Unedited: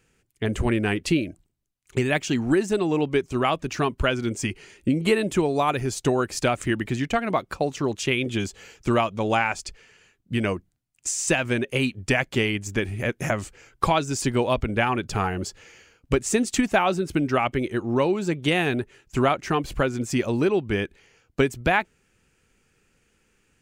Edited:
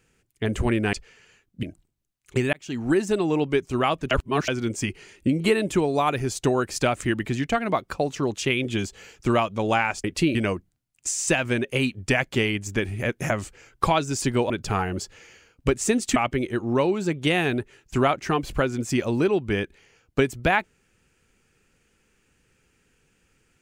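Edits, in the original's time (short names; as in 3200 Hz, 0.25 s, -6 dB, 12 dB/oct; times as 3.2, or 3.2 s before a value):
0.93–1.24 swap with 9.65–10.35
2.14–2.57 fade in
3.72–4.09 reverse
14.5–14.95 cut
16.61–17.37 cut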